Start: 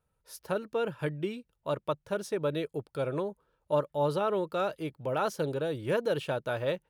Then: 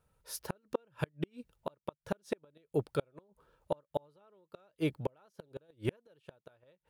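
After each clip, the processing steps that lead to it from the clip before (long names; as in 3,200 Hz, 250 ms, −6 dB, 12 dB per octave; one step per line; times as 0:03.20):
gate with flip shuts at −24 dBFS, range −39 dB
level +4.5 dB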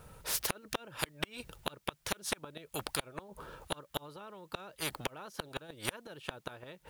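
every bin compressed towards the loudest bin 4 to 1
level +5.5 dB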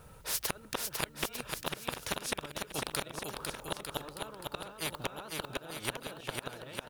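bouncing-ball delay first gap 500 ms, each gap 0.8×, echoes 5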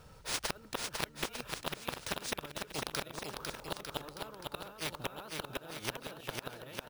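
bad sample-rate conversion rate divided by 3×, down none, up hold
level −2 dB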